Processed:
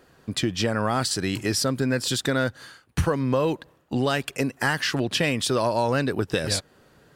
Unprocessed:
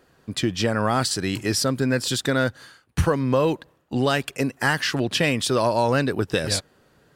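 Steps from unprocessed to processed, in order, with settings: compression 1.5:1, threshold -30 dBFS, peak gain reduction 5.5 dB; trim +2.5 dB

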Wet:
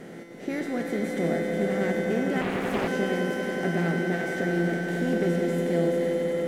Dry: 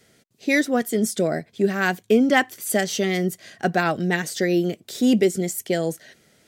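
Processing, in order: spectral levelling over time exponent 0.4; tilt EQ -3 dB/octave; feedback comb 170 Hz, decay 1.6 s, mix 90%; echo with a slow build-up 92 ms, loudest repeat 5, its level -9.5 dB; 2.41–2.88 s: loudspeaker Doppler distortion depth 0.9 ms

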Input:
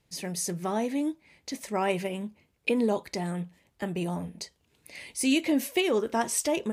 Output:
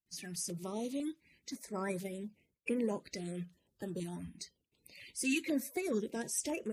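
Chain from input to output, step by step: coarse spectral quantiser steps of 30 dB; gate with hold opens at -58 dBFS; peaking EQ 820 Hz -8.5 dB 0.85 oct; step-sequenced notch 2 Hz 510–3900 Hz; trim -6.5 dB

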